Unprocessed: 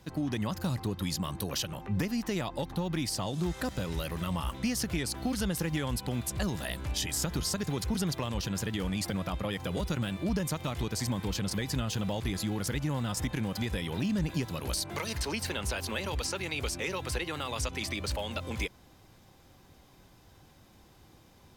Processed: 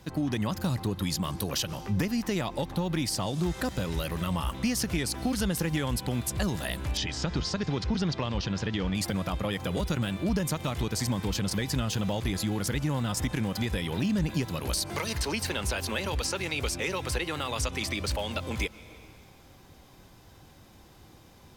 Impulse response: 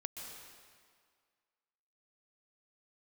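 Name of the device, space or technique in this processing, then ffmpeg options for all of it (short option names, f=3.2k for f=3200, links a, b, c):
compressed reverb return: -filter_complex "[0:a]asplit=2[a][b];[1:a]atrim=start_sample=2205[c];[b][c]afir=irnorm=-1:irlink=0,acompressor=threshold=-39dB:ratio=6,volume=-8dB[d];[a][d]amix=inputs=2:normalize=0,asettb=1/sr,asplit=3[e][f][g];[e]atrim=end=6.974[h];[f]atrim=start=6.97:end=8.95,asetpts=PTS-STARTPTS,afade=t=in:d=0.004:c=qsin,afade=t=out:st=1.976:d=0.004:c=qsin,lowpass=f=5.4k:w=0.5412,lowpass=f=5.4k:w=1.3066[i];[g]atrim=start=8.946[j];[h][i]acrossfade=d=0.004:c1=hsin:c2=qsin[k];[k][j]acrossfade=d=0.004:c1=qsin:c2=hsin,volume=2dB"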